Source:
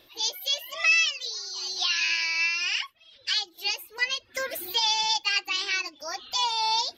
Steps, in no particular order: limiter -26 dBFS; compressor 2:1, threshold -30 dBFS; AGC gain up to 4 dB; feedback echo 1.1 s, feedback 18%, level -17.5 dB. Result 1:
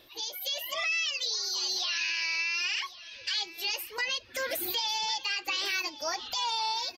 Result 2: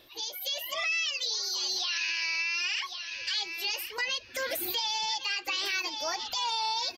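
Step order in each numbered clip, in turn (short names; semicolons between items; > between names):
limiter > compressor > AGC > feedback echo; feedback echo > limiter > compressor > AGC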